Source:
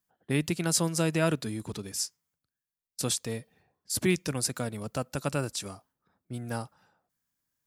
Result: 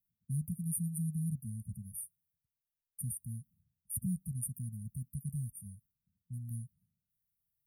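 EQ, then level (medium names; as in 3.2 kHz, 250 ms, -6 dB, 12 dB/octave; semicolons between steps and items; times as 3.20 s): brick-wall FIR band-stop 270–8600 Hz; static phaser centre 1.4 kHz, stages 8; 0.0 dB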